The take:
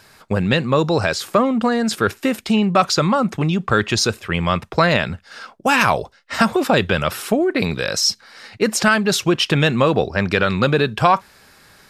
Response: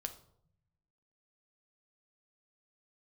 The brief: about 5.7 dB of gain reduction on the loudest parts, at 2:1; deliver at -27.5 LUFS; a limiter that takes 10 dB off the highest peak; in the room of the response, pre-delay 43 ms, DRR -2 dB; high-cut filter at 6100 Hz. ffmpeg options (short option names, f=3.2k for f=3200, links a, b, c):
-filter_complex "[0:a]lowpass=6.1k,acompressor=threshold=-21dB:ratio=2,alimiter=limit=-16dB:level=0:latency=1,asplit=2[a][b];[1:a]atrim=start_sample=2205,adelay=43[c];[b][c]afir=irnorm=-1:irlink=0,volume=4dB[d];[a][d]amix=inputs=2:normalize=0,volume=-5.5dB"